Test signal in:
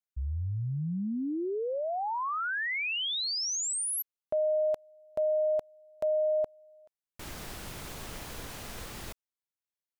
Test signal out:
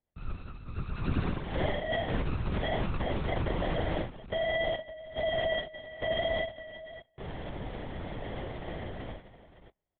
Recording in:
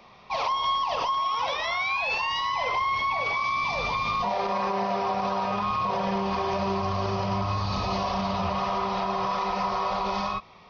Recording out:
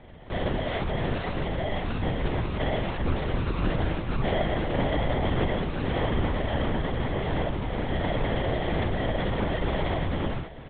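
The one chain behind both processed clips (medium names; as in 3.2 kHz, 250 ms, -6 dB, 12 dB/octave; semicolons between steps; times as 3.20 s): bass shelf 120 Hz -7.5 dB; comb 4.3 ms, depth 64%; in parallel at +0.5 dB: compression, threshold -40 dBFS; on the sum: modulation noise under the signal 20 dB; sample-and-hold 34×; flange 1.7 Hz, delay 3.2 ms, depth 6.7 ms, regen -45%; on a send: multi-tap echo 41/71/180/564 ms -4/-8.5/-19/-14 dB; on the sum: LPC vocoder at 8 kHz whisper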